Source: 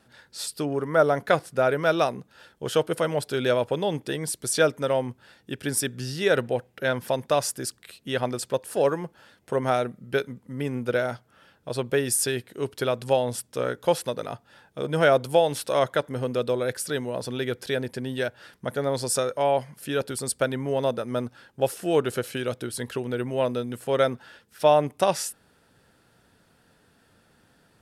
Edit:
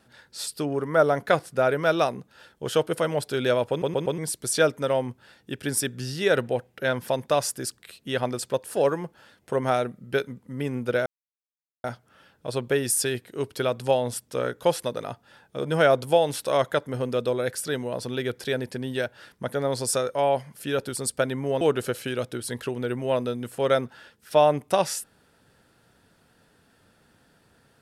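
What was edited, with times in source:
3.7 stutter in place 0.12 s, 4 plays
11.06 insert silence 0.78 s
20.83–21.9 cut

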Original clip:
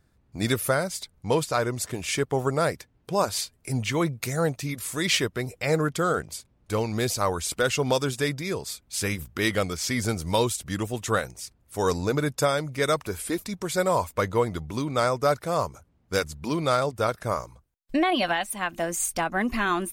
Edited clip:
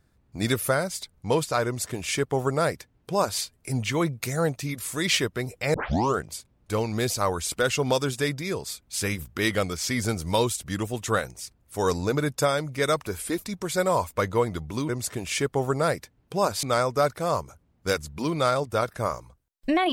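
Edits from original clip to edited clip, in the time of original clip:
1.66–3.4 copy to 14.89
5.74 tape start 0.43 s

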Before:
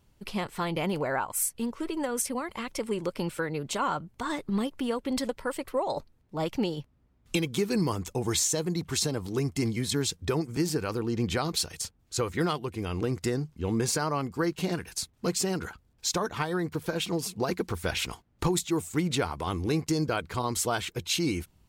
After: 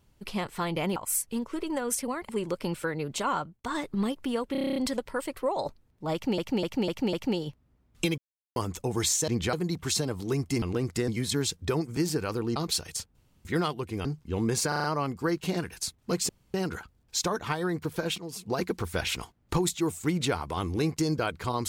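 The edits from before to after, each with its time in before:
0.96–1.23 cut
2.56–2.84 cut
3.92–4.19 fade out
5.07 stutter 0.03 s, 9 plays
6.44–6.69 loop, 5 plays
7.49–7.87 mute
11.16–11.41 move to 8.59
12–12.3 room tone
12.9–13.36 move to 9.68
13.99 stutter 0.04 s, 5 plays
15.44 insert room tone 0.25 s
17.08–17.48 fade in, from -15.5 dB

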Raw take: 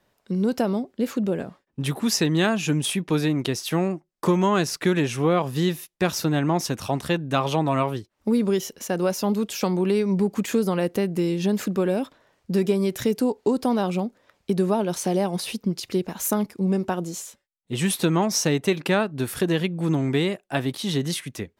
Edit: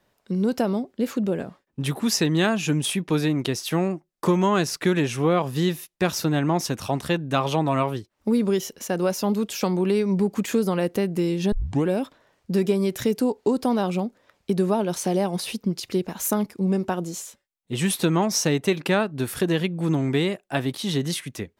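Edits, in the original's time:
11.52 tape start 0.35 s

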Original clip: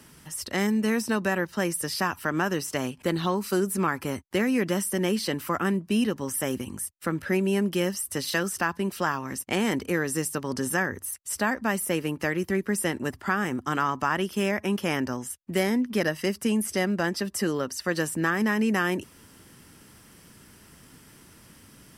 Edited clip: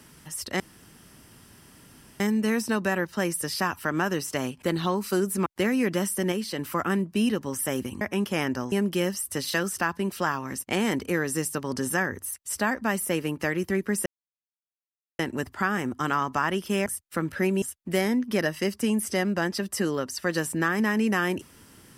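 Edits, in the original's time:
0.6 insert room tone 1.60 s
3.86–4.21 cut
5.07–5.34 gain -4 dB
6.76–7.52 swap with 14.53–15.24
12.86 insert silence 1.13 s

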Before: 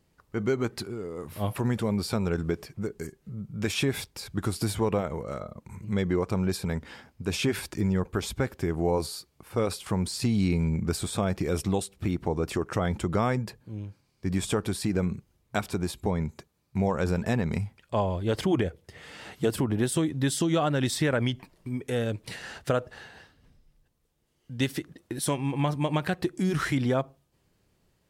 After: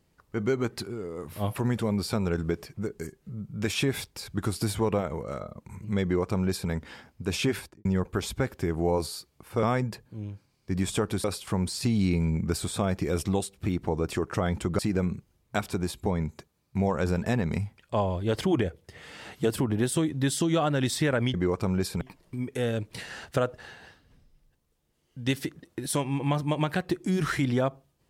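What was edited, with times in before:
6.03–6.7 copy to 21.34
7.5–7.85 studio fade out
13.18–14.79 move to 9.63

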